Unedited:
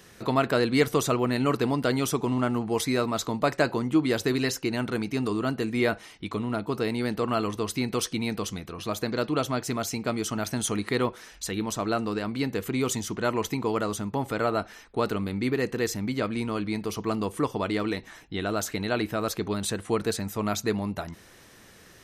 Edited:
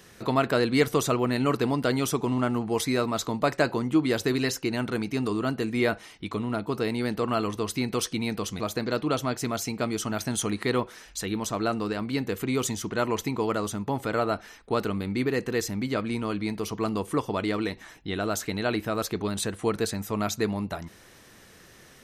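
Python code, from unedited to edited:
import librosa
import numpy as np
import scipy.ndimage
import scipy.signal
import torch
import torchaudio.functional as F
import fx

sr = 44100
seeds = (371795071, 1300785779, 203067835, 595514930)

y = fx.edit(x, sr, fx.cut(start_s=8.6, length_s=0.26), tone=tone)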